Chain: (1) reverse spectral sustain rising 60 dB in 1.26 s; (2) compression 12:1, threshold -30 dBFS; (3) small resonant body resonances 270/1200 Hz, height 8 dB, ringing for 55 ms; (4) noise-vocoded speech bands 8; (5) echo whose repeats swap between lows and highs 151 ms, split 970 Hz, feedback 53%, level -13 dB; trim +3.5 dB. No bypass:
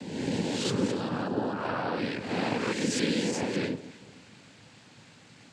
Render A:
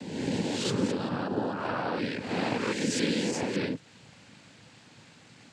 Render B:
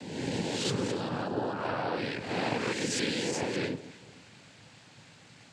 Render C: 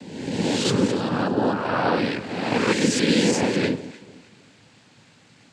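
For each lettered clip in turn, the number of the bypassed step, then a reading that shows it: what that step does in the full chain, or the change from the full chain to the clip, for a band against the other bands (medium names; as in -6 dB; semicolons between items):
5, echo-to-direct -16.0 dB to none; 3, 250 Hz band -4.0 dB; 2, mean gain reduction 4.5 dB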